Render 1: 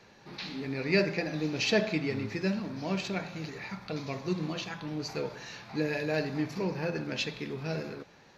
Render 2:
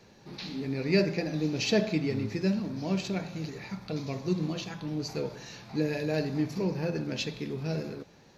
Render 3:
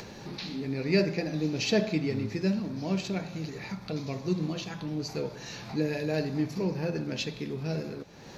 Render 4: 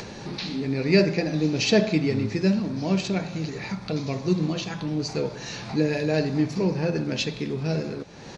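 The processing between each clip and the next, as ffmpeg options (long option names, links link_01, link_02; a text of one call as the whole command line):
ffmpeg -i in.wav -af "equalizer=frequency=1600:width_type=o:width=2.8:gain=-8.5,volume=4dB" out.wav
ffmpeg -i in.wav -af "acompressor=mode=upward:threshold=-33dB:ratio=2.5" out.wav
ffmpeg -i in.wav -af "aresample=22050,aresample=44100,volume=6dB" out.wav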